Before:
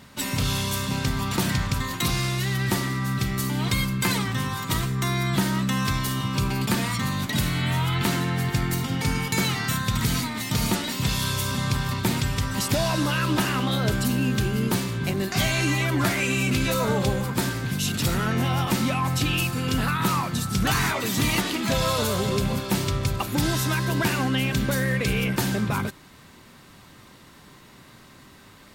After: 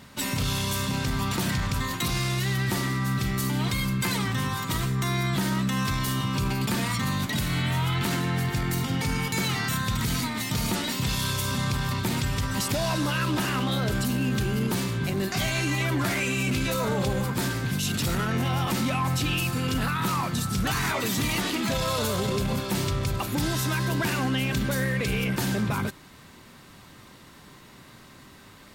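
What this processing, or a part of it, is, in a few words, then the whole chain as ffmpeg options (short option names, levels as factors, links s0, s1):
limiter into clipper: -af "alimiter=limit=0.126:level=0:latency=1:release=24,asoftclip=type=hard:threshold=0.1"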